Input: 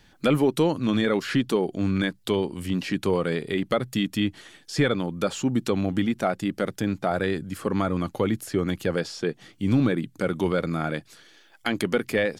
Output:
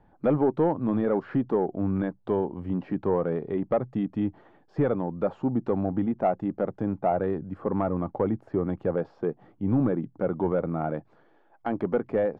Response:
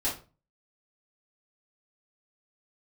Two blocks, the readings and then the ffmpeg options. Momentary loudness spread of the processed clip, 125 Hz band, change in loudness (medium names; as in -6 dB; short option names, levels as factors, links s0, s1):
6 LU, -3.0 dB, -2.0 dB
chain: -af "lowpass=f=840:t=q:w=2,asoftclip=type=tanh:threshold=0.335,volume=0.75"